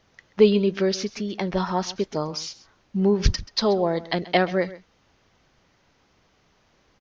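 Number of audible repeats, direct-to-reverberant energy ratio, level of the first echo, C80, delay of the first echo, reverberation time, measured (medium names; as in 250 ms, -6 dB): 1, no reverb, -17.5 dB, no reverb, 132 ms, no reverb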